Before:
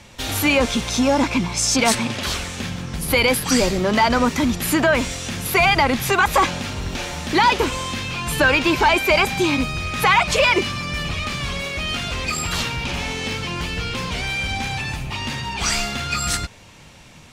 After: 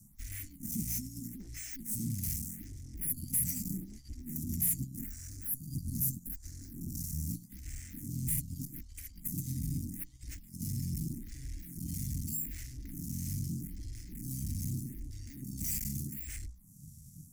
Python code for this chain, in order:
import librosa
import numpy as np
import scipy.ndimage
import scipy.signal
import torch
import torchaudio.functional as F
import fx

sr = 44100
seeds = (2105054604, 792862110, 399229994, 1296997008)

y = fx.hum_notches(x, sr, base_hz=60, count=5)
y = fx.over_compress(y, sr, threshold_db=-21.0, ratio=-1.0)
y = scipy.signal.sosfilt(scipy.signal.cheby2(4, 50, [390.0, 2600.0], 'bandstop', fs=sr, output='sos'), y)
y = fx.tube_stage(y, sr, drive_db=32.0, bias=0.75)
y = fx.band_shelf(y, sr, hz=2600.0, db=-10.5, octaves=1.1, at=(5.06, 7.32))
y = fx.dmg_noise_band(y, sr, seeds[0], low_hz=730.0, high_hz=1200.0, level_db=-69.0)
y = fx.curve_eq(y, sr, hz=(100.0, 290.0, 470.0, 700.0, 1100.0, 2000.0, 3900.0, 7700.0, 13000.0), db=(0, 6, -23, -23, -26, 4, -12, -2, 10))
y = fx.stagger_phaser(y, sr, hz=0.81)